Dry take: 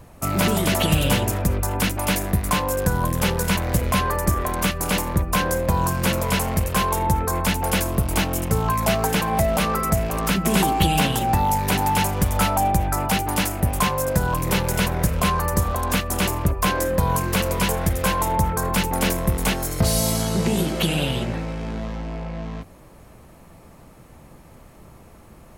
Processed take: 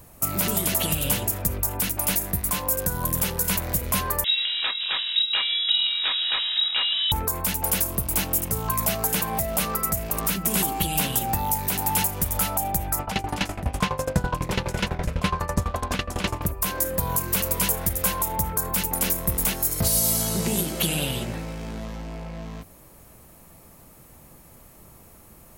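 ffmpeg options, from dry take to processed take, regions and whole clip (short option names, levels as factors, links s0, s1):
-filter_complex "[0:a]asettb=1/sr,asplit=3[s0][s1][s2];[s0]atrim=end=4.244[s3];[s1]atrim=start=4.24:end=7.12,asetpts=PTS-STARTPTS,afade=t=in:d=0.004:c=qsin,afade=t=out:st=2.876:d=0.004:c=qsin,equalizer=f=210:w=2.8:g=-12.5,lowpass=f=3300:t=q:w=0.5098,lowpass=f=3300:t=q:w=0.6013,lowpass=f=3300:t=q:w=0.9,lowpass=f=3300:t=q:w=2.563,afreqshift=-3900[s4];[s2]atrim=start=7.116[s5];[s3][s4]acrossfade=d=0.004:c1=hsin:c2=qsin[s6];[s6][s5]acrossfade=d=0.004:c1=qsin:c2=hsin,asettb=1/sr,asplit=3[s7][s8][s9];[s7]atrim=end=12.994[s10];[s8]atrim=start=12.99:end=16.42,asetpts=PTS-STARTPTS,afade=t=in:d=0.004:c=qsin,afade=t=out:st=3.426:d=0.004:c=qsin,lowpass=4200,acontrast=74,aeval=exprs='val(0)*pow(10,-18*if(lt(mod(12*n/s,1),2*abs(12)/1000),1-mod(12*n/s,1)/(2*abs(12)/1000),(mod(12*n/s,1)-2*abs(12)/1000)/(1-2*abs(12)/1000))/20)':c=same[s11];[s9]atrim=start=16.416[s12];[s10][s11]acrossfade=d=0.004:c1=hsin:c2=qsin[s13];[s13][s12]acrossfade=d=0.004:c1=qsin:c2=hsin,aemphasis=mode=production:type=50fm,alimiter=limit=0.531:level=0:latency=1:release=304,volume=0.596"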